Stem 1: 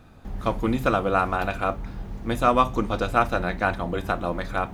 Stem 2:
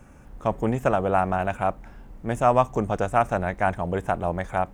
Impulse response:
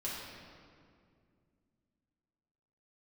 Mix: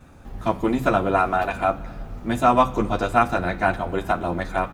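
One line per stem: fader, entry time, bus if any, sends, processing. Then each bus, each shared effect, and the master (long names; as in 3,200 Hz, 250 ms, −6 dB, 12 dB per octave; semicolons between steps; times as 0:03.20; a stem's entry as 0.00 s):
+1.5 dB, 0.00 s, send −15.5 dB, barber-pole flanger 11.3 ms +1.1 Hz
−1.0 dB, 6.4 ms, no send, no processing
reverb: on, RT60 2.3 s, pre-delay 4 ms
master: no processing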